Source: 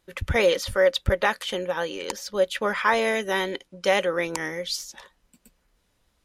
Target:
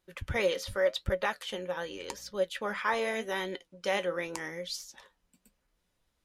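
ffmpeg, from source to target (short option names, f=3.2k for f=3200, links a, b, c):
-filter_complex "[0:a]asettb=1/sr,asplit=3[a][b][c];[a]atrim=end=1.844[d];[b]atrim=start=1.84:end=2.31,asetpts=PTS-STARTPTS,afade=t=in:d=0.004:c=qsin,afade=t=out:st=0.466:d=0.004:c=qsin,aeval=exprs='val(0)+0.00251*(sin(2*PI*60*n/s)+sin(2*PI*2*60*n/s)/2+sin(2*PI*3*60*n/s)/3+sin(2*PI*4*60*n/s)/4+sin(2*PI*5*60*n/s)/5)':c=same[e];[c]atrim=start=2.306[f];[d][e]acrossfade=d=0.004:c1=hsin:c2=qsin[g];[g][f]acrossfade=d=0.004:c1=qsin:c2=hsin,flanger=delay=5.4:depth=5.9:regen=68:speed=0.85:shape=sinusoidal,volume=-4dB"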